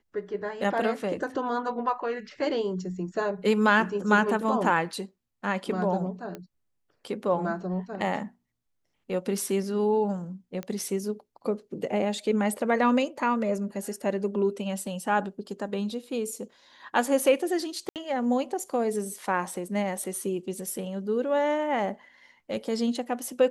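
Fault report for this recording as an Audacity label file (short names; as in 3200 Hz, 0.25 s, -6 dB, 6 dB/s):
6.350000	6.350000	pop -23 dBFS
10.630000	10.630000	pop -21 dBFS
17.890000	17.960000	gap 68 ms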